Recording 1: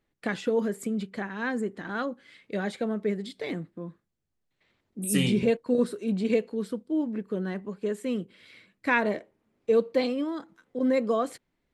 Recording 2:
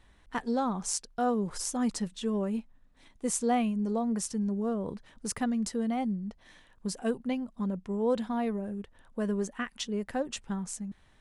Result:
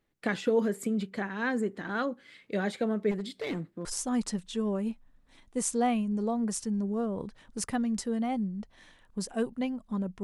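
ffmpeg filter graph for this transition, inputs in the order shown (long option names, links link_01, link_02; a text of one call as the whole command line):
ffmpeg -i cue0.wav -i cue1.wav -filter_complex "[0:a]asettb=1/sr,asplit=3[link_01][link_02][link_03];[link_01]atrim=end=3.114[link_04];[link_02]atrim=start=3.11:end=3.85,asetpts=PTS-STARTPTS,afade=type=in:duration=0.004:curve=qsin,afade=type=out:start_time=0.736:duration=0.004:curve=qsin,asoftclip=type=hard:threshold=-28.5dB[link_05];[link_03]atrim=start=3.846[link_06];[link_04][link_05]acrossfade=duration=0.004:curve1=hsin:curve2=qsin[link_07];[link_07][link_06]acrossfade=duration=0.004:curve1=qsin:curve2=hsin,apad=whole_dur=10.23,atrim=end=10.23,atrim=end=3.852[link_08];[1:a]atrim=start=1.528:end=7.91[link_09];[link_08][link_09]acrossfade=duration=0.004:curve1=hsin:curve2=hsin" out.wav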